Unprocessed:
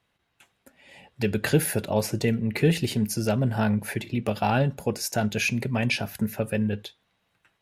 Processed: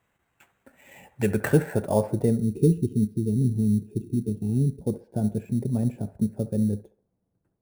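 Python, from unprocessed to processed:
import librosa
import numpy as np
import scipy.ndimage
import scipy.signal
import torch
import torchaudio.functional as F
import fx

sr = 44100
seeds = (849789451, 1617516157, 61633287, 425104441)

p1 = fx.filter_sweep_lowpass(x, sr, from_hz=2200.0, to_hz=350.0, start_s=1.07, end_s=2.95, q=0.89)
p2 = fx.spec_box(p1, sr, start_s=2.38, length_s=2.43, low_hz=460.0, high_hz=2400.0, gain_db=-25)
p3 = fx.sample_hold(p2, sr, seeds[0], rate_hz=10000.0, jitter_pct=0)
p4 = p3 + fx.echo_wet_bandpass(p3, sr, ms=68, feedback_pct=36, hz=970.0, wet_db=-12, dry=0)
y = p4 * librosa.db_to_amplitude(1.5)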